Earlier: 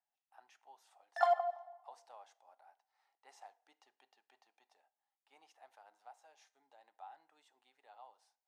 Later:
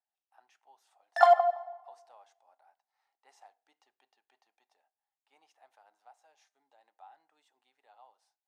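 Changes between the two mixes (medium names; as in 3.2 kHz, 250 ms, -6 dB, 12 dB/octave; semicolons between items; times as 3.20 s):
background +11.5 dB; reverb: off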